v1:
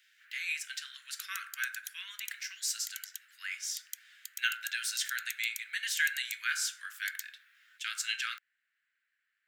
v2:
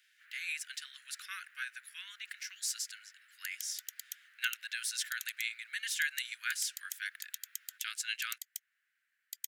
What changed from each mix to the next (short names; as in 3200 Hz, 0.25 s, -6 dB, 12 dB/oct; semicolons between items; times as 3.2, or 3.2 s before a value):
speech: add bell 10000 Hz +7 dB 0.24 oct; second sound: entry +2.25 s; reverb: off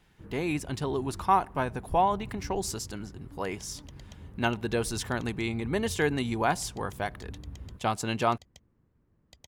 first sound -11.5 dB; second sound: add air absorption 170 m; master: remove steep high-pass 1500 Hz 72 dB/oct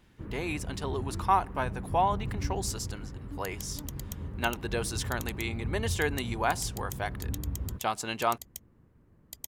speech: add low shelf 300 Hz -11.5 dB; first sound +8.0 dB; second sound: remove air absorption 170 m